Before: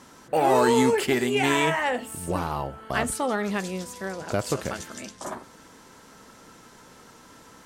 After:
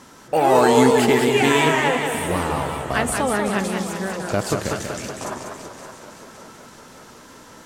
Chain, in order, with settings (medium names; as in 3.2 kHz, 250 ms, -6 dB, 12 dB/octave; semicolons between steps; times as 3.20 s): two-band feedback delay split 320 Hz, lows 281 ms, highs 566 ms, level -13 dB; modulated delay 191 ms, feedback 51%, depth 143 cents, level -5.5 dB; trim +4 dB